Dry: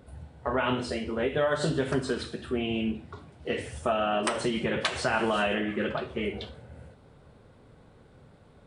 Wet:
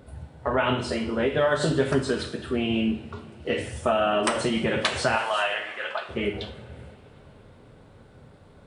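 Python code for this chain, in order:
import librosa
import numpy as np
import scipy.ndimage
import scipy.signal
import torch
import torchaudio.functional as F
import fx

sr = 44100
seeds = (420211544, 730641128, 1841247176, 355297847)

y = fx.highpass(x, sr, hz=660.0, slope=24, at=(5.16, 6.09))
y = fx.rev_double_slope(y, sr, seeds[0], early_s=0.53, late_s=4.2, knee_db=-18, drr_db=9.0)
y = y * 10.0 ** (3.5 / 20.0)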